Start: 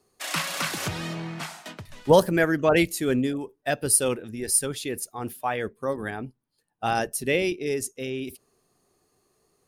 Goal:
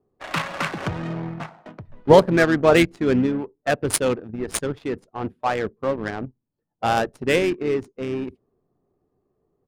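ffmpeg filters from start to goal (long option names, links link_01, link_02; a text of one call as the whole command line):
ffmpeg -i in.wav -filter_complex "[0:a]asplit=2[link_01][link_02];[link_02]acrusher=bits=4:mix=0:aa=0.5,volume=-7dB[link_03];[link_01][link_03]amix=inputs=2:normalize=0,asplit=2[link_04][link_05];[link_05]asetrate=33038,aresample=44100,atempo=1.33484,volume=-14dB[link_06];[link_04][link_06]amix=inputs=2:normalize=0,adynamicsmooth=sensitivity=1.5:basefreq=750,volume=1.5dB" out.wav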